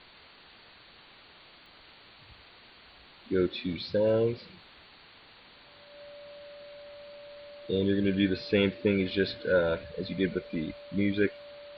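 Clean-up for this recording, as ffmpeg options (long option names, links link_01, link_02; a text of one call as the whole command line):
ffmpeg -i in.wav -af "adeclick=threshold=4,bandreject=frequency=580:width=30,afwtdn=0.004" out.wav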